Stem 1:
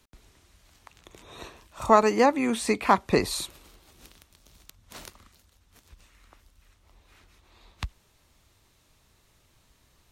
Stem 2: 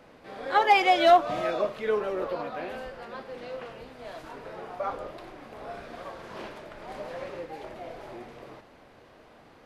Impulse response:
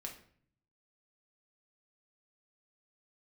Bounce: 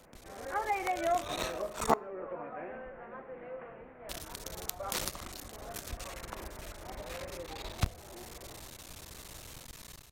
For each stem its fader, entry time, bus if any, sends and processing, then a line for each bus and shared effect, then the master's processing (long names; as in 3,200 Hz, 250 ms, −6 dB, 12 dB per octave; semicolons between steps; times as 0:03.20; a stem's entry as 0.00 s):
−0.5 dB, 0.00 s, muted 0:01.94–0:04.09, send −14.5 dB, sub-harmonics by changed cycles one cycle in 3, muted; high-shelf EQ 4,500 Hz +7 dB; automatic gain control gain up to 14 dB
−8.5 dB, 0.00 s, send −3.5 dB, Butterworth low-pass 2,300 Hz 36 dB per octave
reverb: on, RT60 0.55 s, pre-delay 5 ms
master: downward compressor 1.5 to 1, threshold −40 dBFS, peak gain reduction 11 dB